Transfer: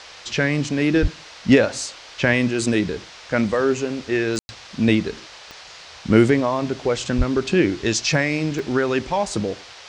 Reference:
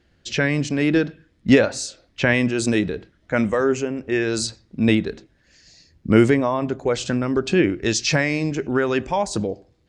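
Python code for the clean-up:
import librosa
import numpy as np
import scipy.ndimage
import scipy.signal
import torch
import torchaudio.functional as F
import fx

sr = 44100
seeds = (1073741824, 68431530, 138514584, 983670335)

y = fx.fix_declick_ar(x, sr, threshold=10.0)
y = fx.highpass(y, sr, hz=140.0, slope=24, at=(1.01, 1.13), fade=0.02)
y = fx.highpass(y, sr, hz=140.0, slope=24, at=(7.17, 7.29), fade=0.02)
y = fx.fix_ambience(y, sr, seeds[0], print_start_s=5.55, print_end_s=6.05, start_s=4.39, end_s=4.49)
y = fx.noise_reduce(y, sr, print_start_s=5.55, print_end_s=6.05, reduce_db=18.0)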